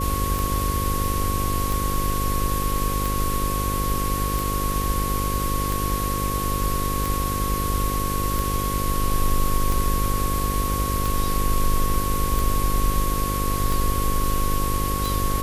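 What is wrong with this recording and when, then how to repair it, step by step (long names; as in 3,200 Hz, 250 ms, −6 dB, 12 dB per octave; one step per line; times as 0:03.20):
mains buzz 50 Hz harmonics 11 −27 dBFS
scratch tick 45 rpm
whistle 1,100 Hz −27 dBFS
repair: click removal
notch filter 1,100 Hz, Q 30
hum removal 50 Hz, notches 11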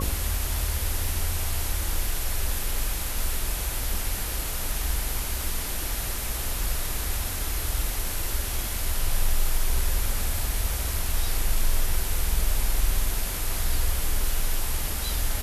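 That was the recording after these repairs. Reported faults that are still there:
none of them is left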